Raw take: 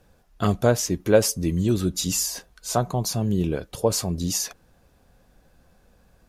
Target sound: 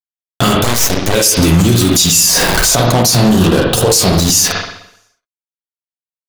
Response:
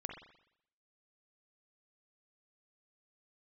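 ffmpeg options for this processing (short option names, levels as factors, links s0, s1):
-filter_complex "[0:a]asettb=1/sr,asplit=3[s0][s1][s2];[s0]atrim=end=1.834[s3];[s1]atrim=start=1.83:end=2.74,asetpts=PTS-STARTPTS,afade=t=in:d=0.004:c=qsin,afade=t=out:st=0.906:d=0.004:c=qsin,aeval=exprs='val(0)+0.5*0.0178*sgn(val(0))':c=same[s4];[s2]atrim=start=2.736[s5];[s3][s4]acrossfade=d=0.004:c1=hsin:c2=qsin[s6];[s6][s5]acrossfade=d=0.004:c1=qsin:c2=hsin,bandreject=f=50:t=h:w=6,bandreject=f=100:t=h:w=6,bandreject=f=150:t=h:w=6,bandreject=f=200:t=h:w=6,bandreject=f=250:t=h:w=6,bandreject=f=300:t=h:w=6,bandreject=f=350:t=h:w=6,acrossover=split=2700[s7][s8];[s7]acompressor=threshold=0.0224:ratio=16[s9];[s9][s8]amix=inputs=2:normalize=0,flanger=delay=7.2:depth=7.9:regen=31:speed=1.1:shape=sinusoidal,acrusher=bits=6:mix=0:aa=0.5,aeval=exprs='0.2*(cos(1*acos(clip(val(0)/0.2,-1,1)))-cos(1*PI/2))+0.0447*(cos(5*acos(clip(val(0)/0.2,-1,1)))-cos(5*PI/2))+0.02*(cos(7*acos(clip(val(0)/0.2,-1,1)))-cos(7*PI/2))':c=same,asettb=1/sr,asplit=3[s10][s11][s12];[s10]atrim=end=3.284[s13];[s11]atrim=start=3.28:end=3.89,asetpts=PTS-STARTPTS,afade=t=in:d=0.004:c=qsin,afade=t=out:st=0.606:d=0.004:c=qsin,equalizer=f=2200:t=o:w=0.22:g=-12.5[s14];[s12]atrim=start=3.886[s15];[s13][s14]acrossfade=d=0.004:c1=hsin:c2=qsin[s16];[s16][s15]acrossfade=d=0.004:c1=qsin:c2=hsin[s17];[1:a]atrim=start_sample=2205[s18];[s17][s18]afir=irnorm=-1:irlink=0,asettb=1/sr,asplit=3[s19][s20][s21];[s19]atrim=end=0.644[s22];[s20]atrim=start=0.64:end=1.15,asetpts=PTS-STARTPTS,afade=t=in:d=0.004:c=qsin,afade=t=out:st=0.506:d=0.004:c=qsin,aeval=exprs='0.106*(cos(1*acos(clip(val(0)/0.106,-1,1)))-cos(1*PI/2))+0.0133*(cos(3*acos(clip(val(0)/0.106,-1,1)))-cos(3*PI/2))+0.0237*(cos(8*acos(clip(val(0)/0.106,-1,1)))-cos(8*PI/2))':c=same[s23];[s21]atrim=start=1.146[s24];[s22][s23]acrossfade=d=0.004:c1=hsin:c2=qsin[s25];[s25][s24]acrossfade=d=0.004:c1=qsin:c2=hsin,alimiter=level_in=53.1:limit=0.891:release=50:level=0:latency=1,volume=0.891"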